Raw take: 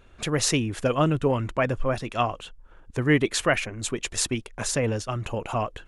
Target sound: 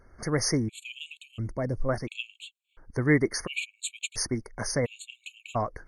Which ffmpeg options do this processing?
-filter_complex "[0:a]asettb=1/sr,asplit=3[a][b][c];[a]atrim=end=1.284[d];[b]atrim=start=1.28:end=1.89,asetpts=PTS-STARTPTS,afade=t=in:d=0.004:c=qsin,afade=t=out:st=0.606:d=0.004:c=qsin,equalizer=f=1.4k:w=0.72:g=-14.5[e];[c]atrim=start=1.886[f];[d][e]acrossfade=d=0.004:c1=hsin:c2=qsin[g];[g][f]acrossfade=d=0.004:c1=qsin:c2=hsin,afftfilt=real='re*gt(sin(2*PI*0.72*pts/sr)*(1-2*mod(floor(b*sr/1024/2200),2)),0)':imag='im*gt(sin(2*PI*0.72*pts/sr)*(1-2*mod(floor(b*sr/1024/2200),2)),0)':win_size=1024:overlap=0.75,volume=-1.5dB"

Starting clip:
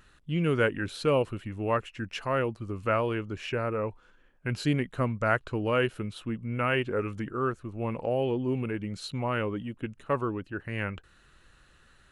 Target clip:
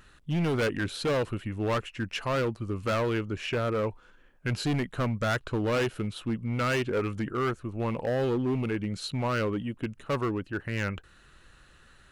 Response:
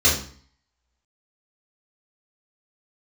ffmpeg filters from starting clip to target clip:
-af "asoftclip=type=hard:threshold=-26.5dB,volume=3dB"

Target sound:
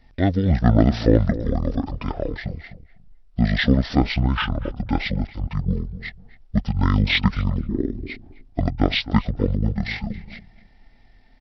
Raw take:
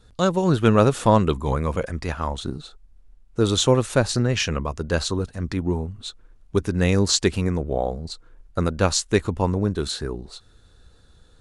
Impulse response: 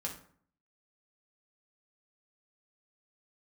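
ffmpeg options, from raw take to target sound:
-filter_complex "[0:a]asplit=2[a][b];[b]adelay=254,lowpass=f=2.5k:p=1,volume=-14dB,asplit=2[c][d];[d]adelay=254,lowpass=f=2.5k:p=1,volume=0.21[e];[a][c][e]amix=inputs=3:normalize=0,asetrate=22696,aresample=44100,atempo=1.94306,volume=1dB"

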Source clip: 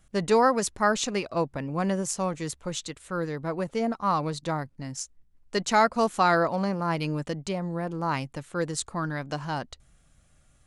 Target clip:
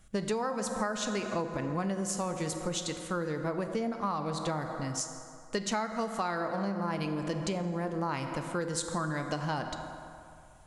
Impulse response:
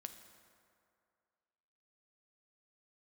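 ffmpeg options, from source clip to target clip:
-filter_complex "[1:a]atrim=start_sample=2205[a];[0:a][a]afir=irnorm=-1:irlink=0,acompressor=threshold=-36dB:ratio=12,volume=7.5dB"

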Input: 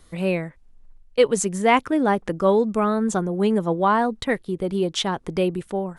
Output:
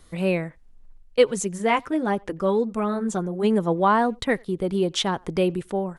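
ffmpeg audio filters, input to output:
-filter_complex "[0:a]asplit=3[a][b][c];[a]afade=t=out:st=1.23:d=0.02[d];[b]flanger=delay=0.3:depth=5.6:regen=-43:speed=1.4:shape=sinusoidal,afade=t=in:st=1.23:d=0.02,afade=t=out:st=3.43:d=0.02[e];[c]afade=t=in:st=3.43:d=0.02[f];[d][e][f]amix=inputs=3:normalize=0,asplit=2[g][h];[h]adelay=90,highpass=300,lowpass=3.4k,asoftclip=type=hard:threshold=-15dB,volume=-28dB[i];[g][i]amix=inputs=2:normalize=0"

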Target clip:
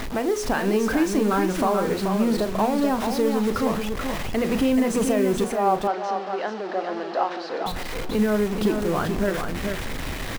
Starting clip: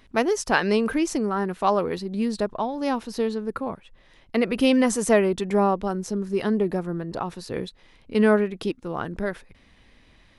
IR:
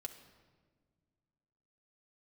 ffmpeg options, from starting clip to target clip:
-filter_complex "[0:a]aeval=exprs='val(0)+0.5*0.0562*sgn(val(0))':c=same,highshelf=f=2.7k:g=-10,bandreject=f=60:t=h:w=6,bandreject=f=120:t=h:w=6,bandreject=f=180:t=h:w=6,bandreject=f=240:t=h:w=6,bandreject=f=300:t=h:w=6,bandreject=f=360:t=h:w=6,bandreject=f=420:t=h:w=6,bandreject=f=480:t=h:w=6,bandreject=f=540:t=h:w=6,alimiter=limit=-16dB:level=0:latency=1:release=160,acrusher=bits=6:mix=0:aa=0.000001,asettb=1/sr,asplit=3[a][b][c];[a]atrim=end=5.444[d];[b]atrim=start=5.44:end=7.66,asetpts=PTS-STARTPTS,afade=t=in:d=0.004:c=qsin,afade=t=out:st=2.216:d=0.004:c=qsin,highpass=f=350:w=0.5412,highpass=f=350:w=1.3066,equalizer=f=410:t=q:w=4:g=-8,equalizer=f=750:t=q:w=4:g=6,equalizer=f=2.3k:t=q:w=4:g=-5,equalizer=f=3.5k:t=q:w=4:g=-4,lowpass=f=4.5k:w=0.5412,lowpass=f=4.5k:w=1.3066[e];[c]atrim=start=7.656[f];[d][e]acrossfade=d=0.004:c1=hsin:c2=qsin[g];[g][f]acrossfade=d=0.004:c1=qsin:c2=hsin,asplit=2[h][i];[i]adelay=38,volume=-13dB[j];[h][j]amix=inputs=2:normalize=0,aecho=1:1:433:0.501,volume=2dB"

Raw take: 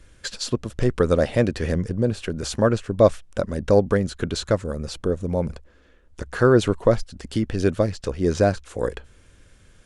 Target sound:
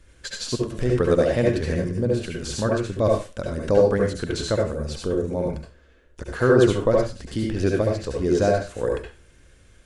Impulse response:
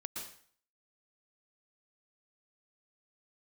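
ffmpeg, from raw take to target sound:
-filter_complex "[0:a]asettb=1/sr,asplit=3[a][b][c];[a]atrim=end=2.194[d];[b]atrim=start=2.19:end=3.48,asetpts=PTS-STARTPTS,afade=t=in:d=0.004:c=qsin,afade=t=out:st=1.286:d=0.004:c=qsin,equalizer=f=520:t=o:w=2.2:g=-4.5[e];[c]atrim=start=3.476[f];[d][e]acrossfade=d=0.004:c1=hsin:c2=qsin[g];[g][f]acrossfade=d=0.004:c1=qsin:c2=hsin[h];[1:a]atrim=start_sample=2205,asetrate=74970,aresample=44100[i];[h][i]afir=irnorm=-1:irlink=0,volume=5.5dB"

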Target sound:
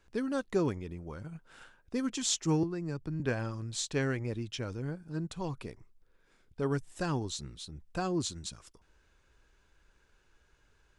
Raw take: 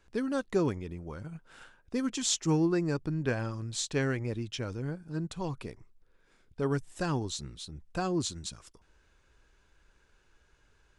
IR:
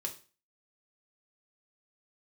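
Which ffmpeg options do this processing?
-filter_complex "[0:a]asettb=1/sr,asplit=3[a][b][c];[a]atrim=end=2.634[d];[b]atrim=start=2.63:end=3.2,asetpts=PTS-STARTPTS,afade=t=in:d=0.004:c=qsin,afade=t=out:st=0.566:d=0.004:c=qsin,acrossover=split=150[e][f];[f]acompressor=threshold=-35dB:ratio=4[g];[e][g]amix=inputs=2:normalize=0[h];[c]atrim=start=3.196[i];[d][h]acrossfade=d=0.004:c1=hsin:c2=qsin[j];[j][i]acrossfade=d=0.004:c1=qsin:c2=hsin,volume=-1.5dB"

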